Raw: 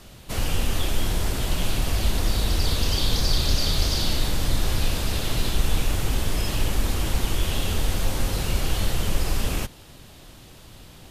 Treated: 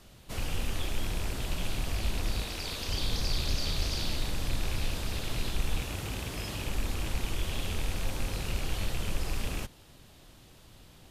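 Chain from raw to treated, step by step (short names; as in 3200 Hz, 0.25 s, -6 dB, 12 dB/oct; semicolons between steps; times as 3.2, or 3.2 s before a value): rattling part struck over -24 dBFS, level -21 dBFS; 2.43–2.89 low shelf 170 Hz -11.5 dB; 4.43–4.99 requantised 10-bit, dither none; 5.8–6.66 HPF 58 Hz; Doppler distortion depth 0.11 ms; gain -8.5 dB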